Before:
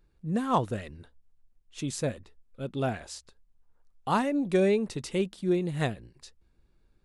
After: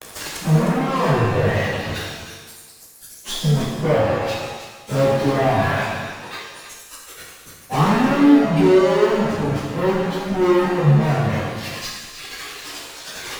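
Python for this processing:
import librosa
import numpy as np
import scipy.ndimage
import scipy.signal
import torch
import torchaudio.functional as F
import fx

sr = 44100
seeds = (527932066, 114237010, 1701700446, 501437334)

y = x + 0.5 * 10.0 ** (-21.0 / 20.0) * np.diff(np.sign(x), prepend=np.sign(x[:1]))
y = fx.quant_companded(y, sr, bits=4)
y = fx.spec_repair(y, sr, seeds[0], start_s=1.35, length_s=0.51, low_hz=240.0, high_hz=3100.0, source='before')
y = fx.env_lowpass_down(y, sr, base_hz=830.0, full_db=-22.0)
y = scipy.signal.sosfilt(scipy.signal.butter(2, 95.0, 'highpass', fs=sr, output='sos'), y)
y = fx.fuzz(y, sr, gain_db=45.0, gate_db=-51.0)
y = fx.dereverb_blind(y, sr, rt60_s=1.9)
y = fx.high_shelf(y, sr, hz=2100.0, db=-10.5)
y = fx.stretch_vocoder_free(y, sr, factor=1.9)
y = y + 10.0 ** (-11.0 / 20.0) * np.pad(y, (int(308 * sr / 1000.0), 0))[:len(y)]
y = fx.rev_shimmer(y, sr, seeds[1], rt60_s=1.2, semitones=7, shimmer_db=-8, drr_db=-2.5)
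y = y * librosa.db_to_amplitude(-2.0)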